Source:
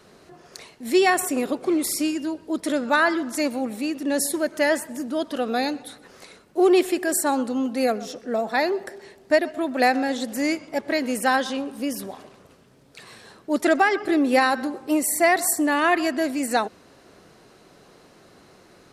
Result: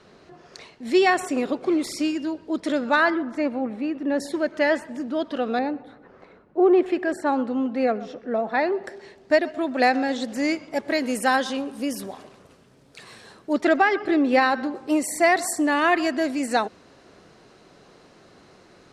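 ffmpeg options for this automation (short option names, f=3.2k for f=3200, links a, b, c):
-af "asetnsamples=n=441:p=0,asendcmd='3.1 lowpass f 2000;4.2 lowpass f 3800;5.59 lowpass f 1400;6.86 lowpass f 2500;8.84 lowpass f 6200;10.71 lowpass f 11000;13.53 lowpass f 4300;14.75 lowpass f 7300',lowpass=5.3k"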